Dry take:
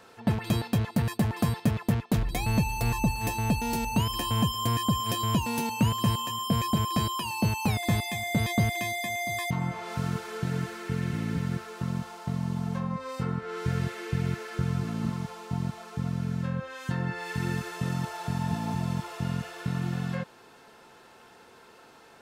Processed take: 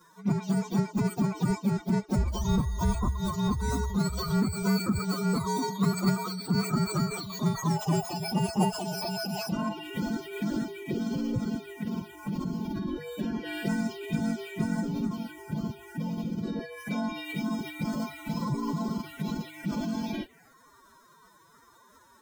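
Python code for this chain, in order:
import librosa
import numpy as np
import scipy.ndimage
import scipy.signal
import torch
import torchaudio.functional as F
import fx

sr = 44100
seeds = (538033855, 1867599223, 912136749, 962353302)

y = fx.partial_stretch(x, sr, pct=114)
y = fx.env_phaser(y, sr, low_hz=390.0, high_hz=3200.0, full_db=-26.5)
y = fx.pitch_keep_formants(y, sr, semitones=10.5)
y = F.gain(torch.from_numpy(y), 3.5).numpy()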